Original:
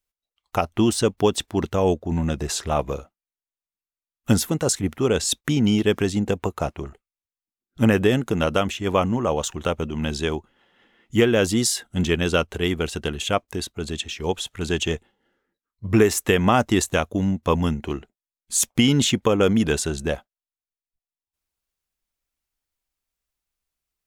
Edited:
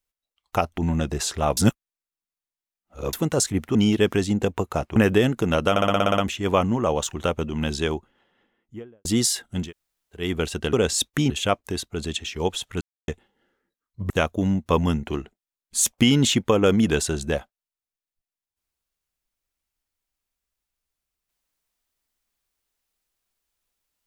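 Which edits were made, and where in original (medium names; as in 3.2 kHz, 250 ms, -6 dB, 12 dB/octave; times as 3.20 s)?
0.78–2.07 s: delete
2.86–4.42 s: reverse
5.04–5.61 s: move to 13.14 s
6.82–7.85 s: delete
8.59 s: stutter 0.06 s, 9 plays
10.24–11.46 s: studio fade out
12.02–12.64 s: room tone, crossfade 0.24 s
14.65–14.92 s: mute
15.94–16.87 s: delete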